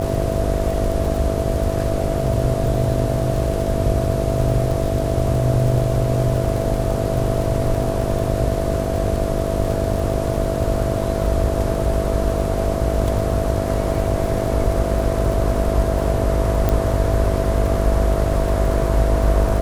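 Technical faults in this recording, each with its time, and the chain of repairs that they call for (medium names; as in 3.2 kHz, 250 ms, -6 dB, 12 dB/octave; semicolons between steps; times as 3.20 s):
buzz 50 Hz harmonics 14 -24 dBFS
crackle 51 per s -25 dBFS
whine 660 Hz -25 dBFS
16.69 s: pop -6 dBFS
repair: de-click; band-stop 660 Hz, Q 30; de-hum 50 Hz, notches 14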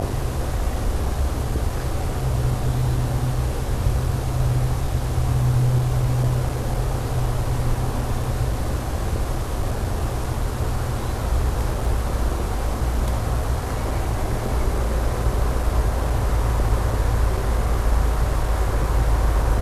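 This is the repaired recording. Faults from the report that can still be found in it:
nothing left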